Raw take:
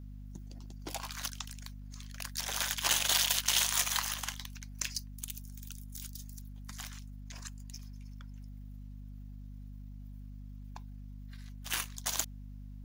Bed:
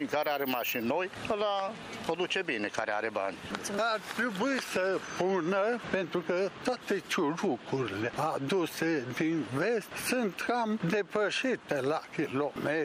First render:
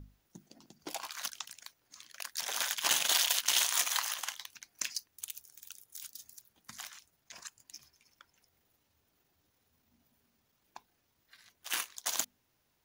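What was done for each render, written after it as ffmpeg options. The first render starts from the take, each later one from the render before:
-af "bandreject=f=50:t=h:w=6,bandreject=f=100:t=h:w=6,bandreject=f=150:t=h:w=6,bandreject=f=200:t=h:w=6,bandreject=f=250:t=h:w=6"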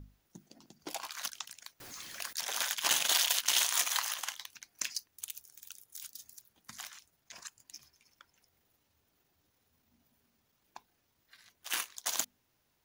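-filter_complex "[0:a]asettb=1/sr,asplit=3[s0][s1][s2];[s0]atrim=end=1.804[s3];[s1]atrim=start=1.8:end=2.33,asetpts=PTS-STARTPTS,afade=t=in:d=0.004:c=qsin,afade=t=out:st=0.526:d=0.004:c=qsin,aeval=exprs='val(0)+0.5*0.00668*sgn(val(0))':c=same[s4];[s2]atrim=start=2.326[s5];[s3][s4]acrossfade=d=0.004:c1=hsin:c2=qsin[s6];[s6][s5]acrossfade=d=0.004:c1=qsin:c2=hsin"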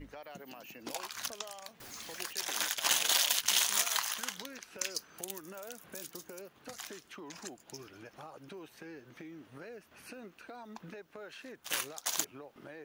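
-filter_complex "[1:a]volume=0.119[s0];[0:a][s0]amix=inputs=2:normalize=0"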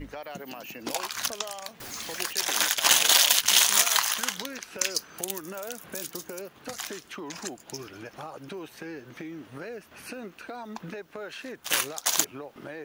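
-af "volume=2.82,alimiter=limit=0.891:level=0:latency=1"

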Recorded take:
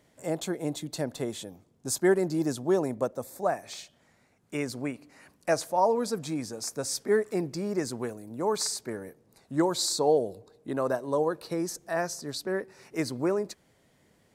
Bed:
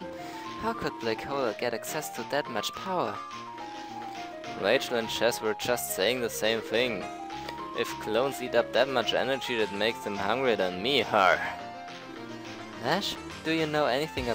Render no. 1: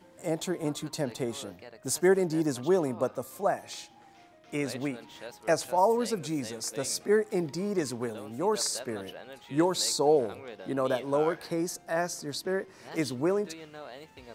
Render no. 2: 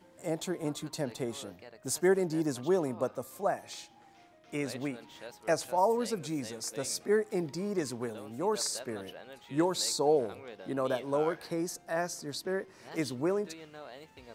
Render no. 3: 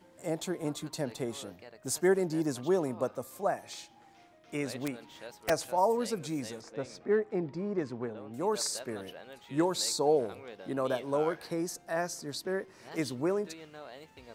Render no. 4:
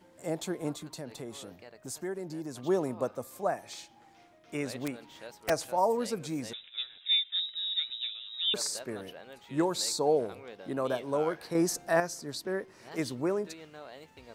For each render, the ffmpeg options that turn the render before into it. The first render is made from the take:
-filter_complex "[1:a]volume=0.126[s0];[0:a][s0]amix=inputs=2:normalize=0"
-af "volume=0.708"
-filter_complex "[0:a]asettb=1/sr,asplit=3[s0][s1][s2];[s0]atrim=end=4.674[s3];[s1]atrim=start=4.67:end=5.5,asetpts=PTS-STARTPTS,afade=t=in:d=0.004:c=qsin,afade=t=out:st=0.826:d=0.004:c=qsin,aeval=exprs='(mod(14.1*val(0)+1,2)-1)/14.1':c=same[s4];[s2]atrim=start=5.496[s5];[s3][s4]acrossfade=d=0.004:c1=hsin:c2=qsin[s6];[s6][s5]acrossfade=d=0.004:c1=qsin:c2=hsin,asettb=1/sr,asplit=3[s7][s8][s9];[s7]atrim=end=6.614[s10];[s8]atrim=start=6.61:end=8.34,asetpts=PTS-STARTPTS,afade=t=in:d=0.004:c=qsin,afade=t=out:st=1.726:d=0.004:c=qsin,adynamicsmooth=sensitivity=1:basefreq=2500[s11];[s9]atrim=start=8.336[s12];[s10][s11]acrossfade=d=0.004:c1=hsin:c2=qsin[s13];[s13][s12]acrossfade=d=0.004:c1=qsin:c2=hsin"
-filter_complex "[0:a]asettb=1/sr,asplit=3[s0][s1][s2];[s0]atrim=end=0.754[s3];[s1]atrim=start=0.75:end=2.64,asetpts=PTS-STARTPTS,afade=t=in:d=0.004:c=qsin,afade=t=out:st=1.886:d=0.004:c=qsin,acompressor=threshold=0.00891:ratio=2:attack=3.2:release=140:knee=1:detection=peak[s4];[s2]atrim=start=2.636[s5];[s3][s4]acrossfade=d=0.004:c1=hsin:c2=qsin[s6];[s6][s5]acrossfade=d=0.004:c1=qsin:c2=hsin,asettb=1/sr,asplit=3[s7][s8][s9];[s7]atrim=end=6.534[s10];[s8]atrim=start=6.53:end=8.54,asetpts=PTS-STARTPTS,afade=t=in:d=0.004:c=qsin,afade=t=out:st=2.006:d=0.004:c=qsin,lowpass=f=3400:t=q:w=0.5098,lowpass=f=3400:t=q:w=0.6013,lowpass=f=3400:t=q:w=0.9,lowpass=f=3400:t=q:w=2.563,afreqshift=-4000[s11];[s9]atrim=start=8.536[s12];[s10][s11]acrossfade=d=0.004:c1=hsin:c2=qsin[s13];[s13][s12]acrossfade=d=0.004:c1=qsin:c2=hsin,asplit=3[s14][s15][s16];[s14]atrim=end=11.552[s17];[s15]atrim=start=11.548:end=12.002,asetpts=PTS-STARTPTS,volume=2.24[s18];[s16]atrim=start=11.998[s19];[s17][s18]acrossfade=d=0.004:c1=hsin:c2=hsin[s20];[s20][s19]acrossfade=d=0.004:c1=hsin:c2=hsin"

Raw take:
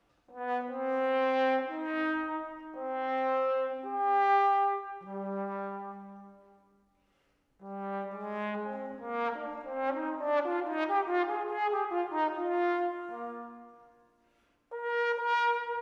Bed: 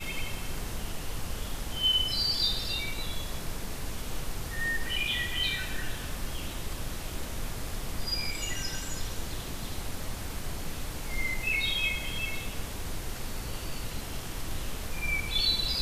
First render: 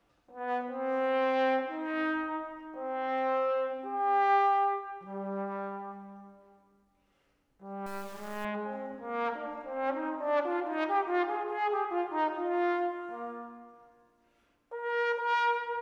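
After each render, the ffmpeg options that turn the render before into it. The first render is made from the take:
-filter_complex "[0:a]asettb=1/sr,asplit=3[s0][s1][s2];[s0]atrim=end=7.864[s3];[s1]atrim=start=7.86:end=8.45,asetpts=PTS-STARTPTS,afade=t=in:d=0.004:c=qsin,afade=t=out:st=0.586:d=0.004:c=qsin,acrusher=bits=5:dc=4:mix=0:aa=0.000001[s4];[s2]atrim=start=8.446[s5];[s3][s4]acrossfade=d=0.004:c1=hsin:c2=qsin[s6];[s6][s5]acrossfade=d=0.004:c1=qsin:c2=hsin"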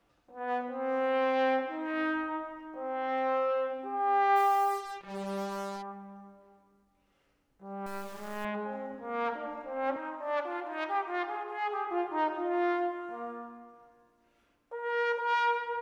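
-filter_complex "[0:a]asplit=3[s0][s1][s2];[s0]afade=t=out:st=4.35:d=0.02[s3];[s1]acrusher=bits=6:mix=0:aa=0.5,afade=t=in:st=4.35:d=0.02,afade=t=out:st=5.81:d=0.02[s4];[s2]afade=t=in:st=5.81:d=0.02[s5];[s3][s4][s5]amix=inputs=3:normalize=0,asettb=1/sr,asplit=3[s6][s7][s8];[s6]atrim=end=9.964[s9];[s7]atrim=start=9.96:end=11.87,asetpts=PTS-STARTPTS,afade=t=in:d=0.004:c=qsin,afade=t=out:st=1.906:d=0.004:c=qsin,highpass=f=740:p=1[s10];[s8]atrim=start=11.866[s11];[s9][s10]acrossfade=d=0.004:c1=hsin:c2=qsin[s12];[s12][s11]acrossfade=d=0.004:c1=qsin:c2=hsin"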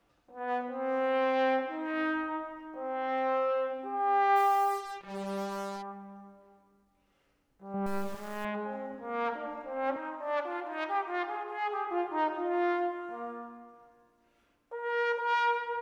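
-filter_complex "[0:a]asettb=1/sr,asplit=3[s0][s1][s2];[s0]atrim=end=7.744[s3];[s1]atrim=start=7.74:end=8.15,asetpts=PTS-STARTPTS,afade=t=in:d=0.004:c=qsin,afade=t=out:st=0.406:d=0.004:c=qsin,lowshelf=f=490:g=10[s4];[s2]atrim=start=8.146[s5];[s3][s4]acrossfade=d=0.004:c1=hsin:c2=qsin[s6];[s6][s5]acrossfade=d=0.004:c1=qsin:c2=hsin"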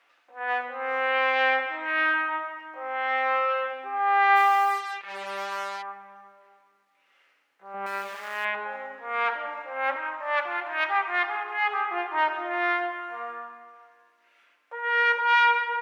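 -af "highpass=520,equalizer=f=2100:t=o:w=2:g=14.5"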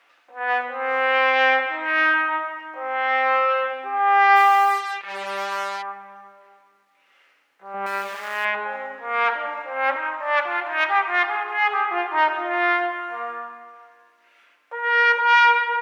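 -af "acontrast=34"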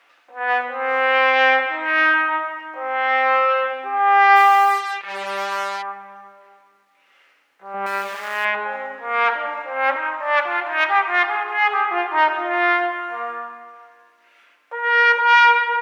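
-af "volume=1.33"

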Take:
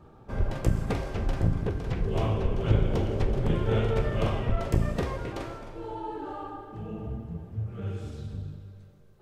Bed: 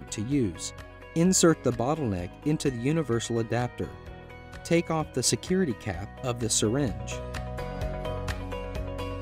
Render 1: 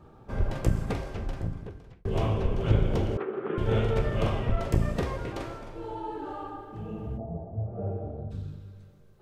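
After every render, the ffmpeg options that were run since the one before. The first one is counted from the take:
-filter_complex "[0:a]asettb=1/sr,asplit=3[s0][s1][s2];[s0]atrim=end=3.174[s3];[s1]atrim=start=3.17:end=3.58,asetpts=PTS-STARTPTS,afade=t=in:d=0.004:c=qsin,afade=t=out:st=0.406:d=0.004:c=qsin,highpass=f=250:w=0.5412,highpass=f=250:w=1.3066,equalizer=f=250:t=q:w=4:g=-8,equalizer=f=390:t=q:w=4:g=5,equalizer=f=590:t=q:w=4:g=-9,equalizer=f=910:t=q:w=4:g=-4,equalizer=f=1300:t=q:w=4:g=9,equalizer=f=2100:t=q:w=4:g=-3,lowpass=f=2300:w=0.5412,lowpass=f=2300:w=1.3066[s4];[s2]atrim=start=3.576[s5];[s3][s4]acrossfade=d=0.004:c1=hsin:c2=qsin[s6];[s6][s5]acrossfade=d=0.004:c1=qsin:c2=hsin,asplit=3[s7][s8][s9];[s7]afade=t=out:st=7.17:d=0.02[s10];[s8]lowpass=f=680:t=q:w=8.2,afade=t=in:st=7.17:d=0.02,afade=t=out:st=8.3:d=0.02[s11];[s9]afade=t=in:st=8.3:d=0.02[s12];[s10][s11][s12]amix=inputs=3:normalize=0,asplit=2[s13][s14];[s13]atrim=end=2.05,asetpts=PTS-STARTPTS,afade=t=out:st=0.67:d=1.38[s15];[s14]atrim=start=2.05,asetpts=PTS-STARTPTS,afade=t=in:d=0.004:c=hsin[s16];[s15][s16]concat=n=2:v=0:a=1"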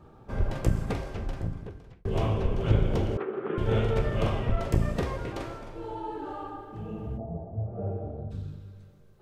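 -af anull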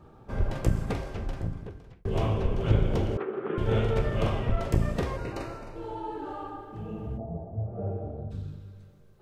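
-filter_complex "[0:a]asettb=1/sr,asplit=3[s0][s1][s2];[s0]atrim=end=5.174[s3];[s1]atrim=start=5.17:end=5.76,asetpts=PTS-STARTPTS,afade=t=in:d=0.004:c=qsin,afade=t=out:st=0.586:d=0.004:c=qsin,asuperstop=centerf=3300:order=20:qfactor=5.7[s4];[s2]atrim=start=5.756[s5];[s3][s4]acrossfade=d=0.004:c1=hsin:c2=qsin[s6];[s6][s5]acrossfade=d=0.004:c1=qsin:c2=hsin"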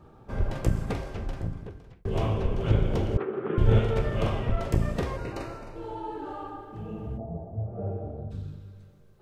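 -filter_complex "[0:a]asettb=1/sr,asplit=3[s0][s1][s2];[s0]atrim=end=3.144[s3];[s1]atrim=start=3.14:end=3.79,asetpts=PTS-STARTPTS,afade=t=in:d=0.004:c=qsin,afade=t=out:st=0.646:d=0.004:c=qsin,lowshelf=f=150:g=10.5[s4];[s2]atrim=start=3.786[s5];[s3][s4]acrossfade=d=0.004:c1=hsin:c2=qsin[s6];[s6][s5]acrossfade=d=0.004:c1=qsin:c2=hsin"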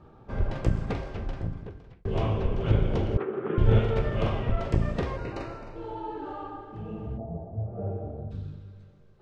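-af "lowpass=4900"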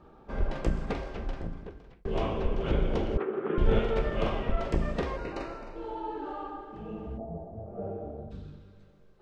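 -af "equalizer=f=110:t=o:w=0.66:g=-14.5"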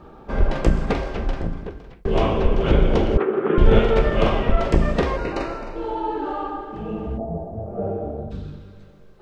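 -af "volume=3.35,alimiter=limit=0.794:level=0:latency=1"

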